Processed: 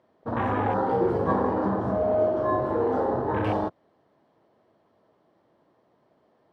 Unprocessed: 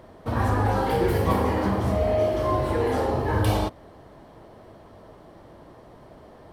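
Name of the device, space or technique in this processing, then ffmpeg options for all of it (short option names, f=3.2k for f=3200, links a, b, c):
over-cleaned archive recording: -af "highpass=160,lowpass=5.8k,afwtdn=0.0282"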